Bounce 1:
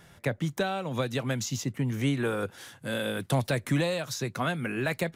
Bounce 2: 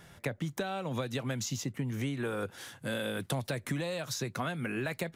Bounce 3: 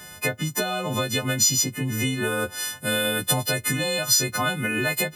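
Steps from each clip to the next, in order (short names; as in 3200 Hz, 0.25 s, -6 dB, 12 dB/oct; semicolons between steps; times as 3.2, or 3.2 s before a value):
compressor 5:1, threshold -31 dBFS, peak gain reduction 9.5 dB
frequency quantiser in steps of 3 st; gain +8 dB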